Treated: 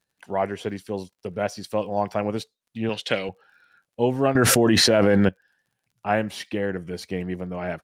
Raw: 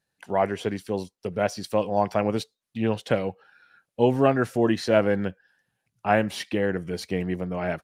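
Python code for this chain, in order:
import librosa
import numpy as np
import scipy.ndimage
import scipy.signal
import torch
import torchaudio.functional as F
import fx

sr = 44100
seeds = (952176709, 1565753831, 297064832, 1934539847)

y = fx.weighting(x, sr, curve='D', at=(2.89, 3.29))
y = fx.dmg_crackle(y, sr, seeds[0], per_s=37.0, level_db=-52.0)
y = fx.env_flatten(y, sr, amount_pct=100, at=(4.35, 5.29))
y = y * 10.0 ** (-1.5 / 20.0)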